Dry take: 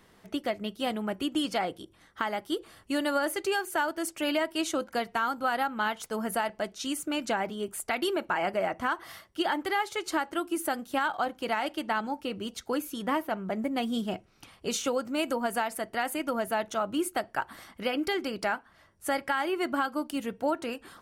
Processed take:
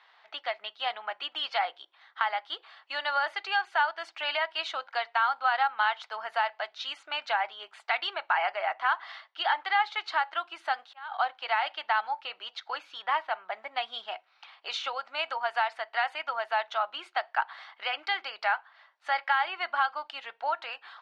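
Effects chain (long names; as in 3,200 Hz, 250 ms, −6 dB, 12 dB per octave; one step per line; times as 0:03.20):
0:10.71–0:11.12: volume swells 686 ms
Chebyshev band-pass filter 770–4,100 Hz, order 3
level +4 dB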